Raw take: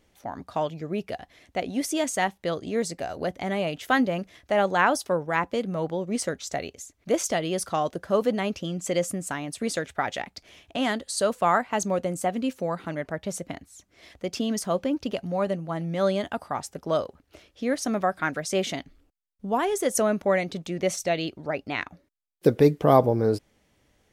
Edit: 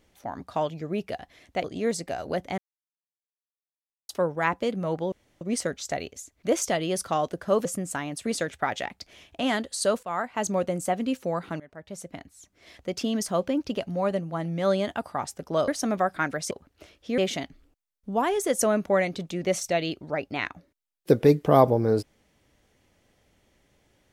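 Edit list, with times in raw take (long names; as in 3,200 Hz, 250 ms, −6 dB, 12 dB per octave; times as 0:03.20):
0:01.64–0:02.55: remove
0:03.49–0:05.00: silence
0:06.03: splice in room tone 0.29 s
0:08.27–0:09.01: remove
0:11.39–0:11.88: fade in, from −15 dB
0:12.96–0:14.40: fade in equal-power, from −22 dB
0:17.04–0:17.71: move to 0:18.54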